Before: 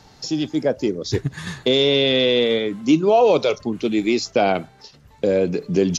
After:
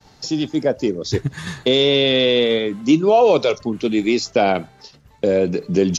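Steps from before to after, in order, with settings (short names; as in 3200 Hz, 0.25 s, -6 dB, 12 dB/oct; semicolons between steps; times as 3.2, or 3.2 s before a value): expander -46 dBFS; gain +1.5 dB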